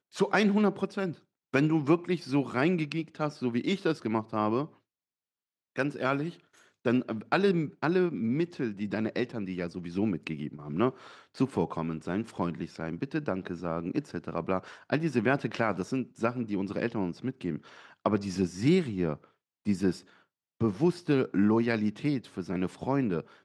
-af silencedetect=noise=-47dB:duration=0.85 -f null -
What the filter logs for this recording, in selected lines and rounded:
silence_start: 4.68
silence_end: 5.76 | silence_duration: 1.08